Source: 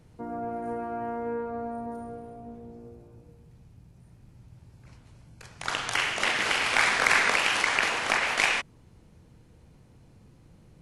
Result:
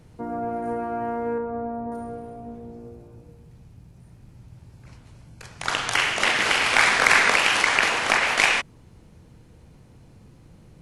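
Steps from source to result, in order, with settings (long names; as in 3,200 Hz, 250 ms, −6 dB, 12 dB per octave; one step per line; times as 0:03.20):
0:01.38–0:01.92: low-pass filter 1,200 Hz 6 dB per octave
level +5 dB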